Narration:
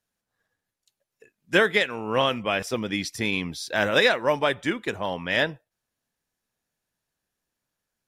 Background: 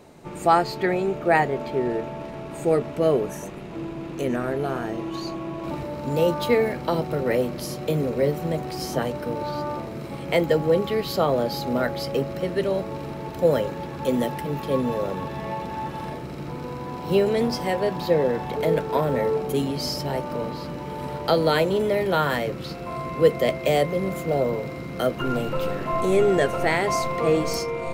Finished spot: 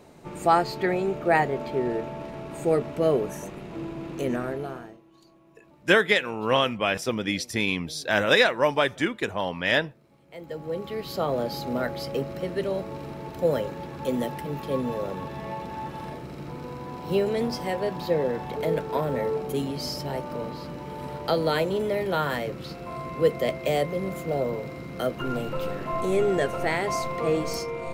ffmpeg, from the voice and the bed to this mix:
-filter_complex "[0:a]adelay=4350,volume=1.06[s0];[1:a]volume=10,afade=t=out:st=4.33:d=0.67:silence=0.0630957,afade=t=in:st=10.3:d=1.11:silence=0.0794328[s1];[s0][s1]amix=inputs=2:normalize=0"

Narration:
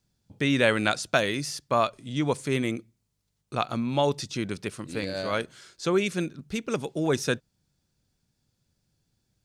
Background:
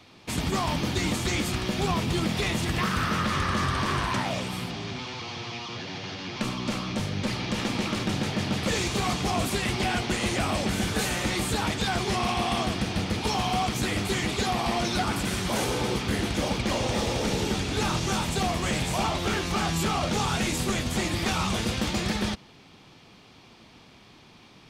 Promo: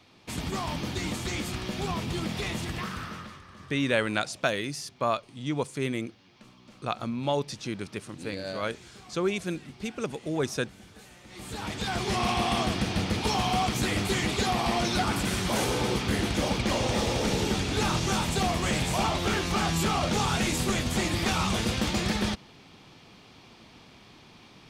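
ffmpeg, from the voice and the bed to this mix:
-filter_complex "[0:a]adelay=3300,volume=0.668[s0];[1:a]volume=8.41,afade=t=out:st=2.57:d=0.84:silence=0.11885,afade=t=in:st=11.28:d=0.99:silence=0.0668344[s1];[s0][s1]amix=inputs=2:normalize=0"

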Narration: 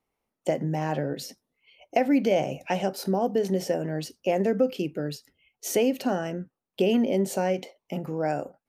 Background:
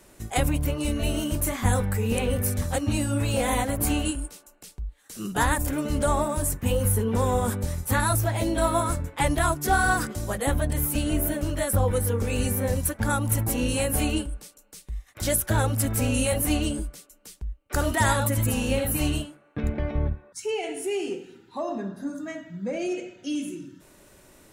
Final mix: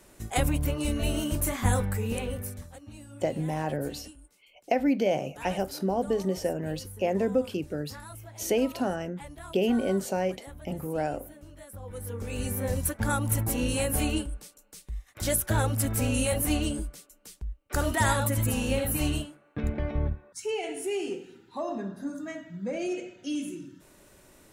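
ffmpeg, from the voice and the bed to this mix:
-filter_complex "[0:a]adelay=2750,volume=0.75[s0];[1:a]volume=6.68,afade=t=out:st=1.75:d=0.98:silence=0.112202,afade=t=in:st=11.81:d=1.06:silence=0.11885[s1];[s0][s1]amix=inputs=2:normalize=0"

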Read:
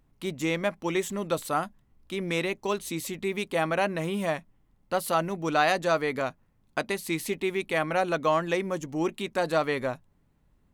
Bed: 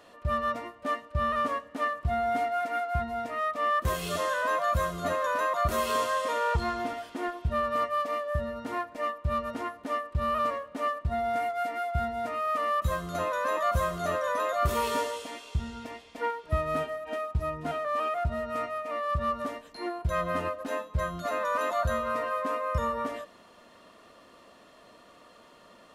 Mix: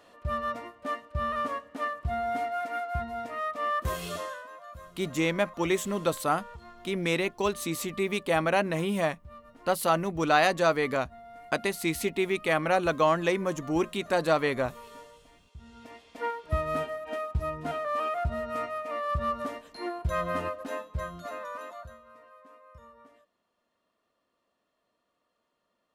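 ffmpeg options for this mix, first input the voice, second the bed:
-filter_complex "[0:a]adelay=4750,volume=1.12[s0];[1:a]volume=6.31,afade=t=out:st=4.04:d=0.43:silence=0.149624,afade=t=in:st=15.56:d=0.79:silence=0.11885,afade=t=out:st=20.34:d=1.64:silence=0.0707946[s1];[s0][s1]amix=inputs=2:normalize=0"

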